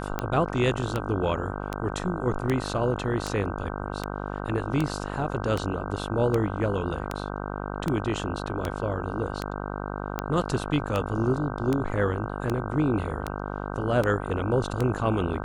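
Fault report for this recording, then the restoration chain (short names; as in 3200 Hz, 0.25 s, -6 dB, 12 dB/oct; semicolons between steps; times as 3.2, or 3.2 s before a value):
buzz 50 Hz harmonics 31 -33 dBFS
tick 78 rpm -13 dBFS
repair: de-click; de-hum 50 Hz, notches 31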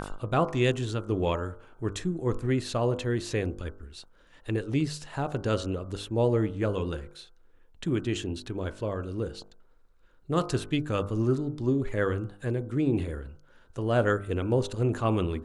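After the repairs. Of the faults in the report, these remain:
none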